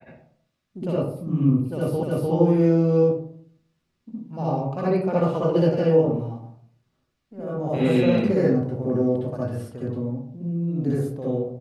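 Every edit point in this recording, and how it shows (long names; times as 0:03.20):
0:02.03: the same again, the last 0.3 s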